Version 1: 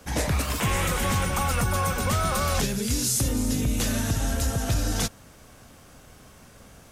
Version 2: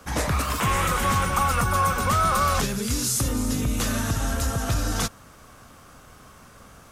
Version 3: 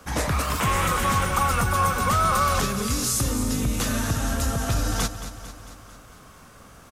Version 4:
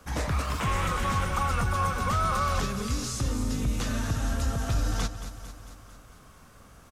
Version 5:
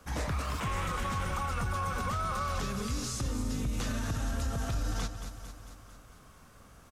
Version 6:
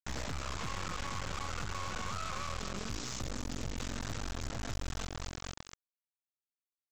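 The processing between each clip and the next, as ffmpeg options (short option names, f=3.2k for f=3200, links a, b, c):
-af "equalizer=f=1.2k:w=2.3:g=8.5"
-af "aecho=1:1:224|448|672|896|1120|1344:0.251|0.146|0.0845|0.049|0.0284|0.0165"
-filter_complex "[0:a]lowshelf=f=92:g=6.5,acrossover=split=7300[a][b];[b]acompressor=threshold=-44dB:ratio=6[c];[a][c]amix=inputs=2:normalize=0,volume=-6dB"
-af "alimiter=limit=-21.5dB:level=0:latency=1:release=37,volume=-3dB"
-af "acompressor=threshold=-33dB:ratio=16,aresample=16000,acrusher=bits=4:dc=4:mix=0:aa=0.000001,aresample=44100,asoftclip=type=hard:threshold=-31dB,volume=2dB"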